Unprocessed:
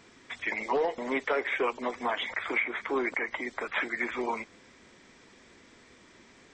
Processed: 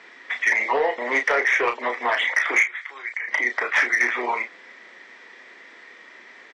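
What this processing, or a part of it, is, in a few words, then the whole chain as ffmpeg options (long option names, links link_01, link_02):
intercom: -filter_complex "[0:a]asettb=1/sr,asplit=3[link_01][link_02][link_03];[link_01]atrim=end=2.644[link_04];[link_02]atrim=start=2.64:end=3.28,asetpts=PTS-STARTPTS,afade=type=in:duration=0.004:curve=qsin,afade=type=out:start_time=0.636:duration=0.004:curve=qsin,aderivative[link_05];[link_03]atrim=start=3.276[link_06];[link_04][link_05]acrossfade=duration=0.004:curve1=hsin:curve2=qsin[link_07];[link_07][link_06]acrossfade=duration=0.004:curve1=qsin:curve2=hsin,highpass=480,lowpass=3900,equalizer=frequency=1900:width_type=o:width=0.31:gain=10,asoftclip=type=tanh:threshold=-19.5dB,asplit=2[link_08][link_09];[link_09]adelay=33,volume=-7dB[link_10];[link_08][link_10]amix=inputs=2:normalize=0,volume=8dB"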